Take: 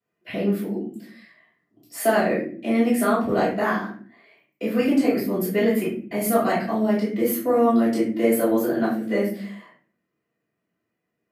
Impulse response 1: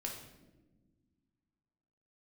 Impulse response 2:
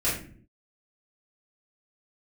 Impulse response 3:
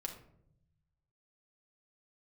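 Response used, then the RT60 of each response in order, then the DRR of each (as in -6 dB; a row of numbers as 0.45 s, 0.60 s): 2; no single decay rate, no single decay rate, 0.70 s; -1.0 dB, -10.0 dB, 1.5 dB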